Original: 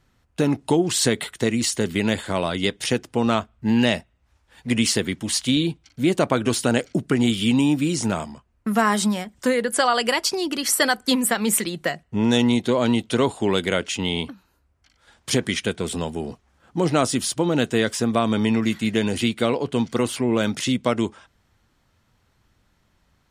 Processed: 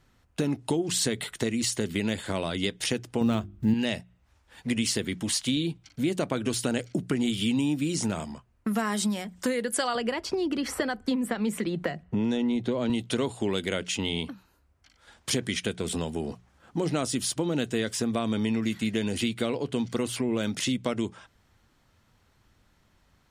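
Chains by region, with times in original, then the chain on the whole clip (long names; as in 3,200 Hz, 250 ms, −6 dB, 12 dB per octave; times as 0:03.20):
0:03.21–0:03.74: one scale factor per block 7 bits + low-shelf EQ 320 Hz +11.5 dB + mains-hum notches 50/100/150/200/250/300/350/400 Hz
0:09.95–0:12.90: low-pass filter 1,300 Hz 6 dB per octave + multiband upward and downward compressor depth 70%
whole clip: mains-hum notches 60/120/180 Hz; dynamic equaliser 1,000 Hz, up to −5 dB, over −33 dBFS, Q 0.8; downward compressor 2 to 1, threshold −28 dBFS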